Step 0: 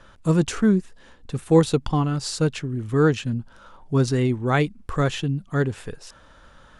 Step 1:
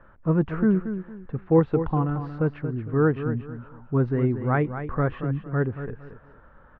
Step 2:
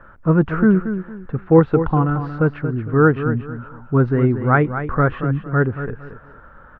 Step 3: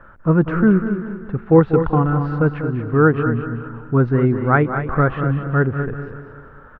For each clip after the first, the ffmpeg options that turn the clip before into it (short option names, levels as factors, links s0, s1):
-af "lowpass=f=1800:w=0.5412,lowpass=f=1800:w=1.3066,aecho=1:1:229|458|687:0.316|0.0917|0.0266,volume=0.75"
-af "equalizer=f=1400:w=3.7:g=6.5,volume=2.11"
-af "aecho=1:1:194|388|582|776|970:0.282|0.132|0.0623|0.0293|0.0138"